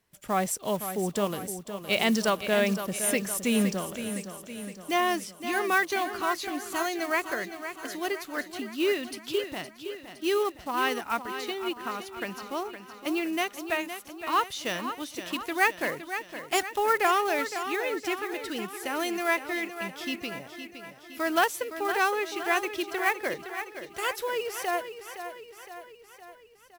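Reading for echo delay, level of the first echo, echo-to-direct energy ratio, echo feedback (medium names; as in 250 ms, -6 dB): 514 ms, -10.0 dB, -8.5 dB, 56%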